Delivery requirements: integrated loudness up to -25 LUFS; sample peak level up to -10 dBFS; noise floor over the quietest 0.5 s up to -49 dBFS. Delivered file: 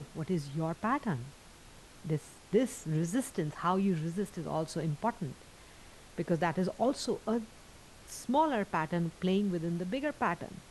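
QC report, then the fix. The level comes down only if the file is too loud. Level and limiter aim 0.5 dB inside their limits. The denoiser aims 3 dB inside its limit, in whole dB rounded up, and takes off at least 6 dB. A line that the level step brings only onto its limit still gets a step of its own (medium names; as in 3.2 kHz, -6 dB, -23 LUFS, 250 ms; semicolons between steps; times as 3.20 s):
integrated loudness -33.5 LUFS: pass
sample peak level -17.0 dBFS: pass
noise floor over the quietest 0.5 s -54 dBFS: pass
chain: none needed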